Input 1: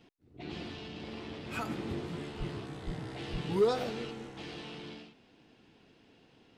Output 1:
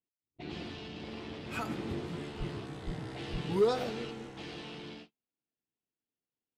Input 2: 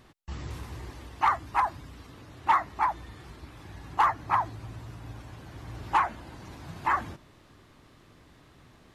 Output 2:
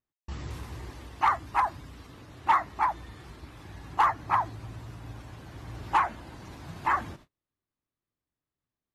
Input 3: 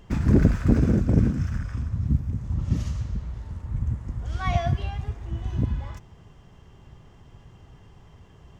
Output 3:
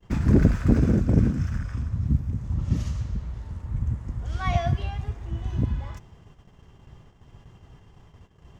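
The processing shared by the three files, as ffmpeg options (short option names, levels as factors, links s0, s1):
-af "agate=range=0.0141:threshold=0.00355:ratio=16:detection=peak"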